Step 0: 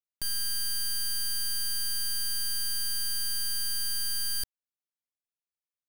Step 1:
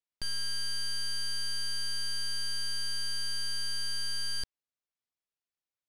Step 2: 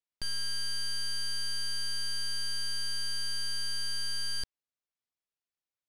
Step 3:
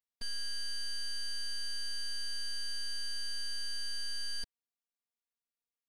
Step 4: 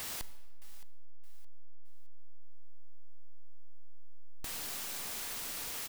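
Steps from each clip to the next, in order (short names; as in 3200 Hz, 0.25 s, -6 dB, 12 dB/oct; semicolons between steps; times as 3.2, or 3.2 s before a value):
LPF 6200 Hz 12 dB/oct
nothing audible
robotiser 234 Hz; gain -3.5 dB
infinite clipping; feedback echo 0.618 s, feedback 35%, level -18.5 dB; on a send at -14 dB: reverb RT60 1.3 s, pre-delay 32 ms; on the sum: gain +1.5 dB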